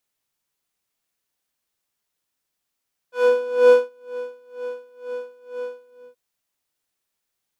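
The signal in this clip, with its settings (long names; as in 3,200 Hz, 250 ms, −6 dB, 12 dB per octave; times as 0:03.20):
subtractive patch with tremolo B4, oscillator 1 square, oscillator 2 square, interval +12 semitones, oscillator 2 level −13 dB, sub −23.5 dB, noise −10 dB, filter bandpass, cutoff 290 Hz, Q 0.87, filter envelope 2 octaves, filter decay 0.18 s, filter sustain 35%, attack 397 ms, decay 0.38 s, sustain −23 dB, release 0.39 s, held 2.64 s, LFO 2.1 Hz, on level 23 dB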